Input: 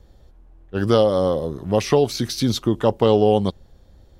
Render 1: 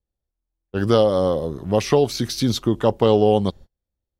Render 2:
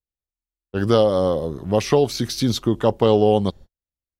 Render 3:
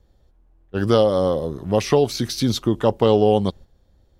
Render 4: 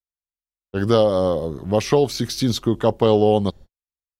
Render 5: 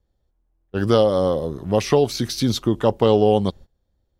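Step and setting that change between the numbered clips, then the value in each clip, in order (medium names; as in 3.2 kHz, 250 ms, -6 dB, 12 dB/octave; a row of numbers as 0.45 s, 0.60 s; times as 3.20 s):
gate, range: -34 dB, -47 dB, -8 dB, -59 dB, -20 dB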